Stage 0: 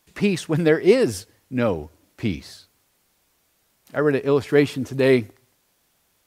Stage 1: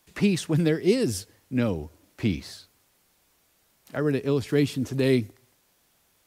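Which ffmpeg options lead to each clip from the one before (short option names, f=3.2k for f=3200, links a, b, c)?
-filter_complex "[0:a]acrossover=split=320|3000[a][b][c];[b]acompressor=threshold=-33dB:ratio=3[d];[a][d][c]amix=inputs=3:normalize=0"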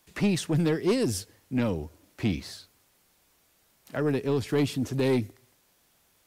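-af "asoftclip=type=tanh:threshold=-17.5dB"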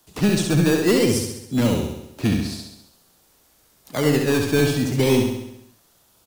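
-filter_complex "[0:a]acrossover=split=220|2500[a][b][c];[b]acrusher=samples=17:mix=1:aa=0.000001:lfo=1:lforange=10.2:lforate=0.5[d];[a][d][c]amix=inputs=3:normalize=0,aecho=1:1:67|134|201|268|335|402|469|536:0.596|0.34|0.194|0.11|0.0629|0.0358|0.0204|0.0116,volume=6dB"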